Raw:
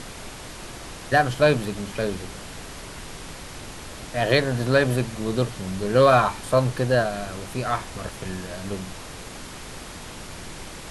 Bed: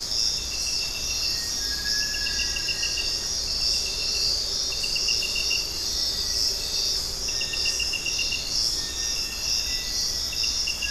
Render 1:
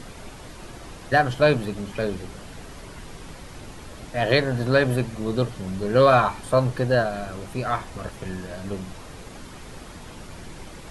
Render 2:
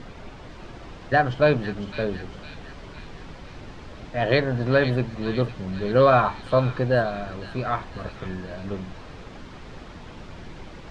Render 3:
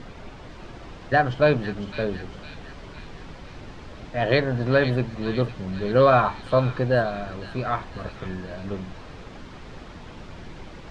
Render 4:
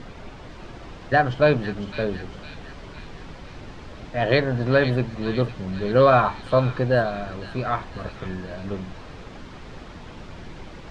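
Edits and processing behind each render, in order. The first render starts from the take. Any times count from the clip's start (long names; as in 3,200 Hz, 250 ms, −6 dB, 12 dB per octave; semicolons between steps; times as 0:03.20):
broadband denoise 7 dB, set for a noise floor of −39 dBFS
high-frequency loss of the air 160 metres; delay with a high-pass on its return 506 ms, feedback 54%, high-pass 2,800 Hz, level −5 dB
no processing that can be heard
level +1 dB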